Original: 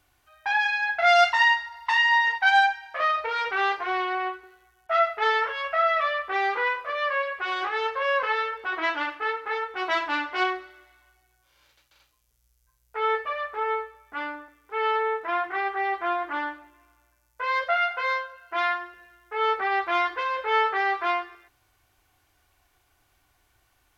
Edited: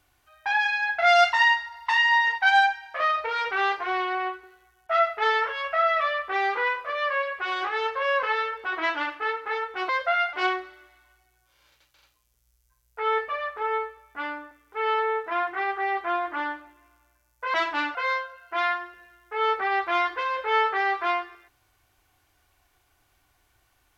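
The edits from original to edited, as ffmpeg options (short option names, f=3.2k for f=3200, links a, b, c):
-filter_complex "[0:a]asplit=5[a][b][c][d][e];[a]atrim=end=9.892[f];[b]atrim=start=17.508:end=17.952[g];[c]atrim=start=10.298:end=17.512[h];[d]atrim=start=9.888:end=10.302[i];[e]atrim=start=17.948[j];[f][g]acrossfade=d=0.004:c1=hsin:c2=hsin[k];[k][h]acrossfade=d=0.004:c1=hsin:c2=hsin[l];[l][i]acrossfade=d=0.004:c1=hsin:c2=hsin[m];[m][j]acrossfade=d=0.004:c1=hsin:c2=hsin"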